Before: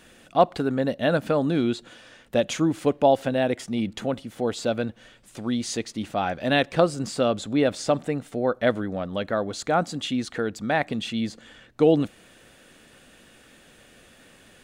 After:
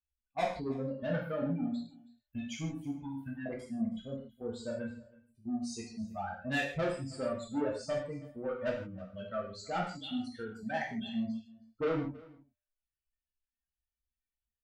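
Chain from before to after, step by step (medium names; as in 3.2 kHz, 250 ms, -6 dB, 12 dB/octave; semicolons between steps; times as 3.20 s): expander on every frequency bin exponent 2; 1.42–3.46 s: elliptic band-stop 280–1100 Hz; spectral gate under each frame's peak -20 dB strong; reverb removal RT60 0.63 s; gate -45 dBFS, range -8 dB; treble shelf 3.1 kHz -10 dB; saturation -25.5 dBFS, distortion -7 dB; feedback comb 120 Hz, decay 0.86 s, harmonics odd, mix 30%; delay 322 ms -22 dB; gated-style reverb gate 190 ms falling, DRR -3.5 dB; trim -3 dB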